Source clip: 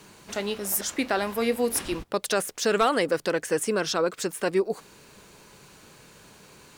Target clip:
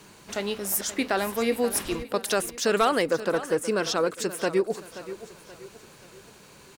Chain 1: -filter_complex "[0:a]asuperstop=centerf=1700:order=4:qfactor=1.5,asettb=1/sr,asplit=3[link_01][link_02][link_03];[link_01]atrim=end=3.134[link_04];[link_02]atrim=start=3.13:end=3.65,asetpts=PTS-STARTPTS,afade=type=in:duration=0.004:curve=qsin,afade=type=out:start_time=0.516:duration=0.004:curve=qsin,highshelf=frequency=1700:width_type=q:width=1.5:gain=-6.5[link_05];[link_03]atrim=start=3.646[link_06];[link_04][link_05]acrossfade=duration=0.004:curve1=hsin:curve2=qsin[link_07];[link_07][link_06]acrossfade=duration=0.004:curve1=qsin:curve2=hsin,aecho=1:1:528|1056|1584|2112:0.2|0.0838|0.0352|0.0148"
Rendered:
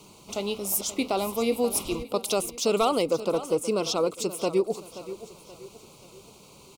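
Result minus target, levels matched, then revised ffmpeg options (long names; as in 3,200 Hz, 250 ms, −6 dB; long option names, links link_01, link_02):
2,000 Hz band −8.0 dB
-filter_complex "[0:a]asettb=1/sr,asplit=3[link_01][link_02][link_03];[link_01]atrim=end=3.134[link_04];[link_02]atrim=start=3.13:end=3.65,asetpts=PTS-STARTPTS,afade=type=in:duration=0.004:curve=qsin,afade=type=out:start_time=0.516:duration=0.004:curve=qsin,highshelf=frequency=1700:width_type=q:width=1.5:gain=-6.5[link_05];[link_03]atrim=start=3.646[link_06];[link_04][link_05]acrossfade=duration=0.004:curve1=hsin:curve2=qsin[link_07];[link_07][link_06]acrossfade=duration=0.004:curve1=qsin:curve2=hsin,aecho=1:1:528|1056|1584|2112:0.2|0.0838|0.0352|0.0148"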